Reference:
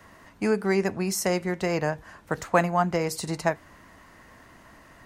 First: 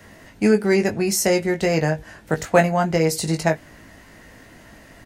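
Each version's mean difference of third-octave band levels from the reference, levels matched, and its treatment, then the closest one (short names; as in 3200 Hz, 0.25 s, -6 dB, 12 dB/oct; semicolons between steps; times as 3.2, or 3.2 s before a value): 2.0 dB: bell 1100 Hz -10.5 dB 0.67 oct; doubler 19 ms -5.5 dB; gain +6.5 dB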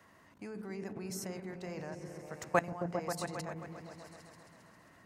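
6.5 dB: HPF 100 Hz 12 dB/oct; level quantiser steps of 19 dB; repeats that get brighter 0.134 s, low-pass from 200 Hz, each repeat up 1 oct, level 0 dB; gain -5.5 dB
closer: first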